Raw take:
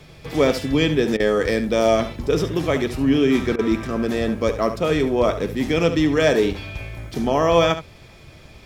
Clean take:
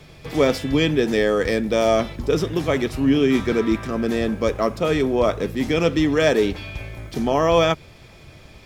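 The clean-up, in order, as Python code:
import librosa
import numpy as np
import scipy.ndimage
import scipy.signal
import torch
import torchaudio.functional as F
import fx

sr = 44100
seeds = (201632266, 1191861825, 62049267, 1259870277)

y = fx.fix_interpolate(x, sr, at_s=(1.17, 3.56), length_ms=27.0)
y = fx.fix_echo_inverse(y, sr, delay_ms=71, level_db=-11.5)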